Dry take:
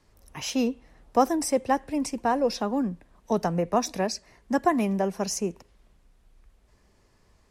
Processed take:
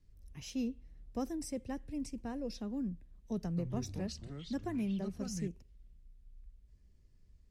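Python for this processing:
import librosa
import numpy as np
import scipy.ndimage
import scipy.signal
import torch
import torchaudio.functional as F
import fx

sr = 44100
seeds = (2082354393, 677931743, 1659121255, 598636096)

y = fx.tone_stack(x, sr, knobs='10-0-1')
y = fx.echo_pitch(y, sr, ms=131, semitones=-5, count=3, db_per_echo=-6.0, at=(3.44, 5.48))
y = fx.high_shelf(y, sr, hz=6800.0, db=-5.0)
y = y * librosa.db_to_amplitude(8.0)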